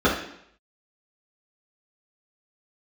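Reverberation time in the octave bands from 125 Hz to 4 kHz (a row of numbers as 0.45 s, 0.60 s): 0.70 s, 0.65 s, 0.70 s, 0.70 s, 0.70 s, 0.70 s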